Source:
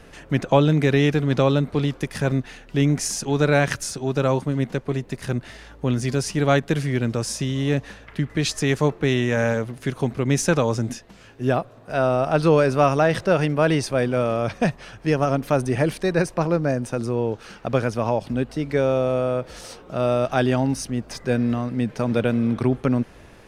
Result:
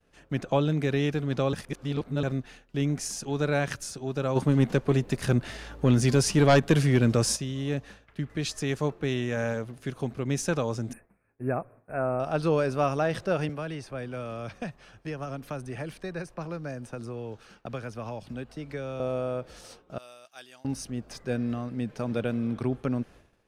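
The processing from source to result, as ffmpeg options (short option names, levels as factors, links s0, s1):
-filter_complex "[0:a]asplit=3[s0][s1][s2];[s0]afade=t=out:st=4.35:d=0.02[s3];[s1]aeval=exprs='0.668*sin(PI/2*2*val(0)/0.668)':c=same,afade=t=in:st=4.35:d=0.02,afade=t=out:st=7.35:d=0.02[s4];[s2]afade=t=in:st=7.35:d=0.02[s5];[s3][s4][s5]amix=inputs=3:normalize=0,asettb=1/sr,asplit=3[s6][s7][s8];[s6]atrim=end=10.934[s9];[s7]atrim=start=10.93:end=12.2,asetpts=PTS-STARTPTS,afade=t=in:d=0.004:c=qsin,afade=t=out:st=1.266:d=0.004:c=qsin,asuperstop=centerf=4700:order=20:qfactor=0.8[s10];[s8]atrim=start=12.196[s11];[s9][s10]acrossfade=d=0.004:c1=hsin:c2=qsin[s12];[s12][s11]acrossfade=d=0.004:c1=qsin:c2=hsin,asettb=1/sr,asplit=3[s13][s14][s15];[s13]atrim=end=13.494[s16];[s14]atrim=start=13.49:end=19,asetpts=PTS-STARTPTS,afade=t=in:d=0.004:c=qsin,afade=t=out:st=5.506:d=0.004:c=qsin,acrossover=split=230|460|1200|2500[s17][s18][s19][s20][s21];[s17]acompressor=threshold=0.0282:ratio=3[s22];[s18]acompressor=threshold=0.0126:ratio=3[s23];[s19]acompressor=threshold=0.02:ratio=3[s24];[s20]acompressor=threshold=0.0158:ratio=3[s25];[s21]acompressor=threshold=0.00562:ratio=3[s26];[s22][s23][s24][s25][s26]amix=inputs=5:normalize=0[s27];[s15]atrim=start=18.996[s28];[s16][s27]acrossfade=d=0.004:c1=hsin:c2=qsin[s29];[s29][s28]acrossfade=d=0.004:c1=qsin:c2=hsin,asettb=1/sr,asplit=3[s30][s31][s32];[s30]atrim=end=19.984[s33];[s31]atrim=start=19.98:end=20.65,asetpts=PTS-STARTPTS,afade=t=in:d=0.004:c=qsin,afade=t=out:st=0.666:d=0.004:c=qsin,aderivative[s34];[s32]atrim=start=20.646[s35];[s33][s34]acrossfade=d=0.004:c1=hsin:c2=qsin[s36];[s36][s35]acrossfade=d=0.004:c1=qsin:c2=hsin,asplit=3[s37][s38][s39];[s37]atrim=end=1.532[s40];[s38]atrim=start=1.528:end=2.232,asetpts=PTS-STARTPTS,areverse[s41];[s39]atrim=start=2.228[s42];[s40][s41]acrossfade=d=0.004:c1=hsin:c2=hsin[s43];[s43][s42]acrossfade=d=0.004:c1=hsin:c2=hsin,bandreject=f=950:w=24,agate=range=0.0224:threshold=0.0141:ratio=3:detection=peak,equalizer=f=2000:t=o:w=0.24:g=-3,volume=0.398"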